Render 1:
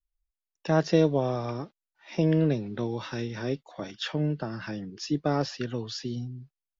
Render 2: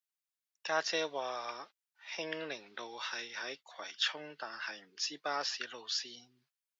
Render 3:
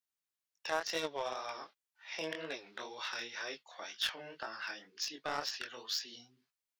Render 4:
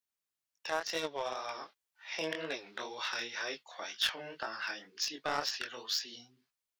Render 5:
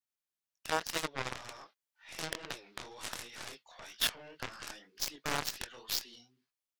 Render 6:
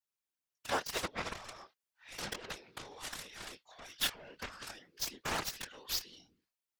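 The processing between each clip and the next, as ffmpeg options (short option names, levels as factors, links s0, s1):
-af "highpass=1200,volume=1.26"
-filter_complex "[0:a]flanger=delay=18:depth=7.4:speed=2,asplit=2[s0][s1];[s1]acrusher=bits=4:mix=0:aa=0.5,volume=0.631[s2];[s0][s2]amix=inputs=2:normalize=0,alimiter=level_in=1.12:limit=0.0631:level=0:latency=1:release=194,volume=0.891,volume=1.33"
-af "dynaudnorm=f=610:g=5:m=1.5"
-af "aeval=exprs='0.119*(cos(1*acos(clip(val(0)/0.119,-1,1)))-cos(1*PI/2))+0.015*(cos(5*acos(clip(val(0)/0.119,-1,1)))-cos(5*PI/2))+0.0075*(cos(6*acos(clip(val(0)/0.119,-1,1)))-cos(6*PI/2))+0.0376*(cos(7*acos(clip(val(0)/0.119,-1,1)))-cos(7*PI/2))':c=same"
-af "afftfilt=real='hypot(re,im)*cos(2*PI*random(0))':imag='hypot(re,im)*sin(2*PI*random(1))':win_size=512:overlap=0.75,volume=1.68"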